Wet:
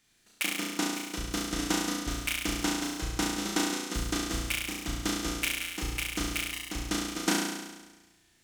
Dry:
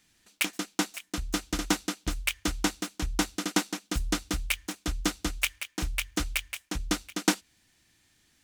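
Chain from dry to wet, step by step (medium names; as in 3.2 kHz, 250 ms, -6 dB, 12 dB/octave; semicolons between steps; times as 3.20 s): flutter echo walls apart 5.9 m, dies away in 1.2 s; trim -4.5 dB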